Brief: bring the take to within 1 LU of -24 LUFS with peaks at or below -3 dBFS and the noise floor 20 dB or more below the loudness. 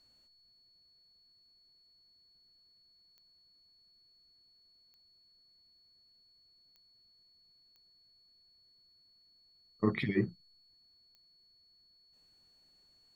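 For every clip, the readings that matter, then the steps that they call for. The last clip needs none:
clicks 5; steady tone 4400 Hz; tone level -64 dBFS; loudness -33.5 LUFS; peak -15.0 dBFS; loudness target -24.0 LUFS
-> de-click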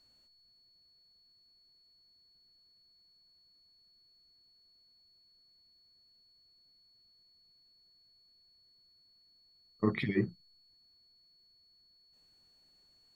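clicks 0; steady tone 4400 Hz; tone level -64 dBFS
-> notch 4400 Hz, Q 30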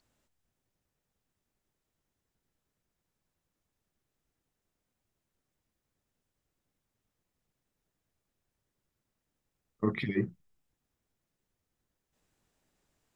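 steady tone none; loudness -33.5 LUFS; peak -15.5 dBFS; loudness target -24.0 LUFS
-> gain +9.5 dB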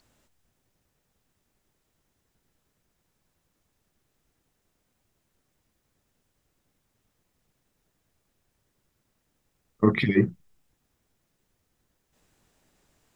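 loudness -24.0 LUFS; peak -5.5 dBFS; noise floor -76 dBFS

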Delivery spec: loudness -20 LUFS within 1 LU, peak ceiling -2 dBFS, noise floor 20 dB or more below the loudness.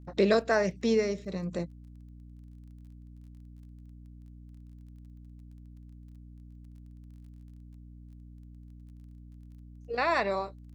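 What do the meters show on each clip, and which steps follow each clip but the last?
ticks 23/s; hum 60 Hz; harmonics up to 300 Hz; hum level -46 dBFS; loudness -29.0 LUFS; peak -12.5 dBFS; loudness target -20.0 LUFS
-> de-click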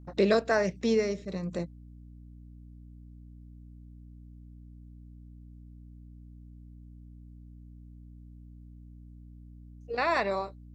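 ticks 0/s; hum 60 Hz; harmonics up to 300 Hz; hum level -46 dBFS
-> de-hum 60 Hz, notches 5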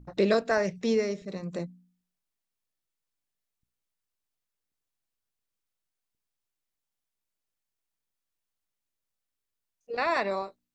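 hum none; loudness -29.0 LUFS; peak -12.5 dBFS; loudness target -20.0 LUFS
-> gain +9 dB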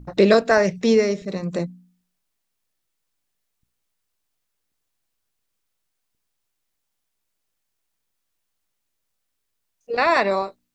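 loudness -20.0 LUFS; peak -3.5 dBFS; noise floor -77 dBFS

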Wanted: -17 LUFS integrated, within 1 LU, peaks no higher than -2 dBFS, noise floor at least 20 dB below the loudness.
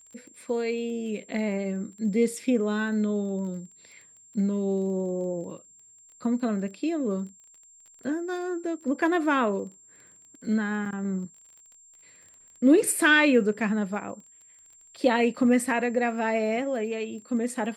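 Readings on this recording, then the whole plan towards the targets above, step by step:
ticks 19/s; steady tone 7400 Hz; tone level -52 dBFS; loudness -26.5 LUFS; peak -9.0 dBFS; loudness target -17.0 LUFS
-> de-click; notch 7400 Hz, Q 30; gain +9.5 dB; limiter -2 dBFS

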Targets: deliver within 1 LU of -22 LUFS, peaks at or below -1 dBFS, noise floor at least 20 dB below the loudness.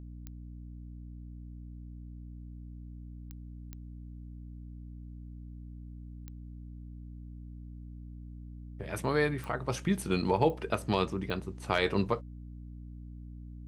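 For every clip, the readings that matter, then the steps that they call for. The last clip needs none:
clicks 7; hum 60 Hz; harmonics up to 300 Hz; hum level -42 dBFS; loudness -31.5 LUFS; peak -11.5 dBFS; loudness target -22.0 LUFS
-> de-click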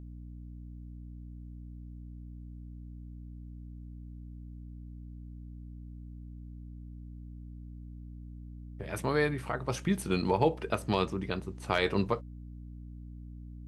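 clicks 0; hum 60 Hz; harmonics up to 300 Hz; hum level -42 dBFS
-> de-hum 60 Hz, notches 5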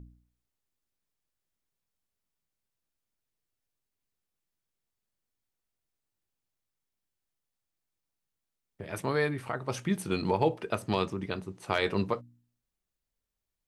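hum none; loudness -31.5 LUFS; peak -11.5 dBFS; loudness target -22.0 LUFS
-> gain +9.5 dB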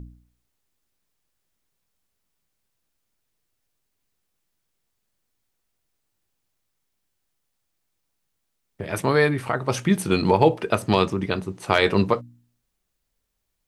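loudness -22.0 LUFS; peak -2.0 dBFS; noise floor -77 dBFS

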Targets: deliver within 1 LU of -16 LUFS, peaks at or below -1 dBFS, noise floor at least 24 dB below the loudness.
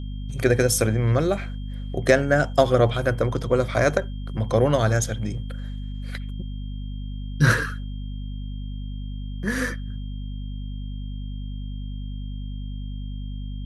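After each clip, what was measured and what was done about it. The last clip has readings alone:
hum 50 Hz; harmonics up to 250 Hz; hum level -29 dBFS; steady tone 3200 Hz; tone level -51 dBFS; loudness -25.5 LUFS; peak -1.5 dBFS; loudness target -16.0 LUFS
-> notches 50/100/150/200/250 Hz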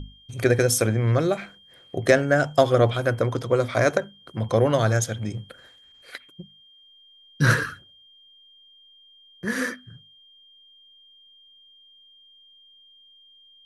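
hum none; steady tone 3200 Hz; tone level -51 dBFS
-> notch 3200 Hz, Q 30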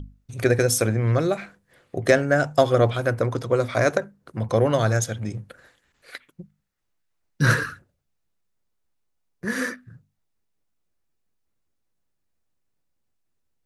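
steady tone none; loudness -22.5 LUFS; peak -2.5 dBFS; loudness target -16.0 LUFS
-> gain +6.5 dB; limiter -1 dBFS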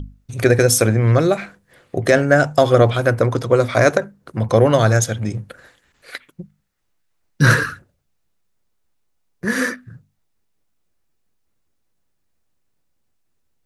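loudness -16.5 LUFS; peak -1.0 dBFS; noise floor -68 dBFS

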